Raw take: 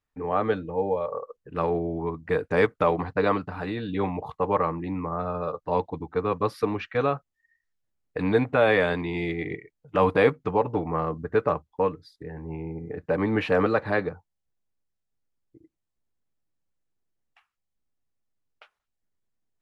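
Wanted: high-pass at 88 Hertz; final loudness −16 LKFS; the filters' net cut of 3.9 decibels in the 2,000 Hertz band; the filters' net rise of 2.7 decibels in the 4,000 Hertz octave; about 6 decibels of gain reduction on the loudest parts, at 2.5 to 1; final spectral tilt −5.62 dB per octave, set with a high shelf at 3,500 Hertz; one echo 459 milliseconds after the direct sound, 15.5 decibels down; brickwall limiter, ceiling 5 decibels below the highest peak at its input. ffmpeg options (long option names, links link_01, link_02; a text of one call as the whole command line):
ffmpeg -i in.wav -af "highpass=88,equalizer=frequency=2000:width_type=o:gain=-5.5,highshelf=frequency=3500:gain=-5.5,equalizer=frequency=4000:width_type=o:gain=8.5,acompressor=threshold=-24dB:ratio=2.5,alimiter=limit=-18.5dB:level=0:latency=1,aecho=1:1:459:0.168,volume=15.5dB" out.wav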